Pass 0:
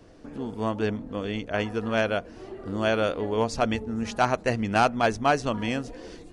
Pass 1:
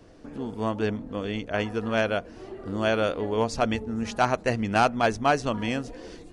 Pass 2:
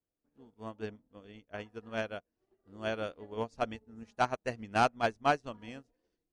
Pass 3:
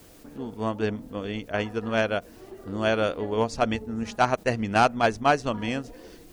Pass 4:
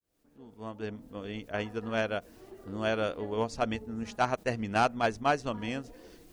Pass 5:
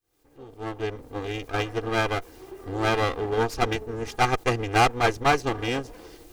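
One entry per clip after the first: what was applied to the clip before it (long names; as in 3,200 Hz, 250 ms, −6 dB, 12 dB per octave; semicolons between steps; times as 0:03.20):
no processing that can be heard
expander for the loud parts 2.5 to 1, over −43 dBFS; level −4 dB
envelope flattener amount 50%; level +6 dB
fade in at the beginning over 1.45 s; level −6 dB
lower of the sound and its delayed copy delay 2.5 ms; level +8 dB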